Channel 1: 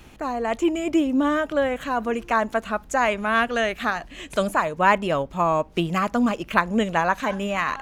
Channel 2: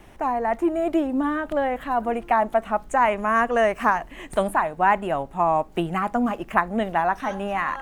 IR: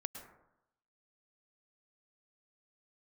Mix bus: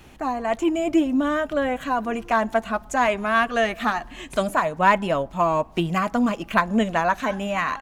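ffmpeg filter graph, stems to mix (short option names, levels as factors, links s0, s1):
-filter_complex "[0:a]volume=0.891[s0];[1:a]asoftclip=type=hard:threshold=0.2,asplit=2[s1][s2];[s2]adelay=4.9,afreqshift=0.69[s3];[s1][s3]amix=inputs=2:normalize=1,volume=-1,adelay=2.4,volume=0.531,asplit=2[s4][s5];[s5]volume=0.251[s6];[2:a]atrim=start_sample=2205[s7];[s6][s7]afir=irnorm=-1:irlink=0[s8];[s0][s4][s8]amix=inputs=3:normalize=0"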